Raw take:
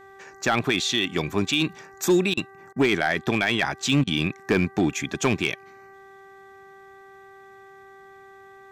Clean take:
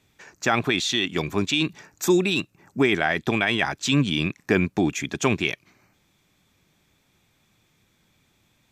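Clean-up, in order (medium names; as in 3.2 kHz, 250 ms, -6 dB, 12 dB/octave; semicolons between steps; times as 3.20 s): clip repair -13 dBFS; de-hum 389.8 Hz, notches 5; interpolate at 2.34/2.73/4.04 s, 31 ms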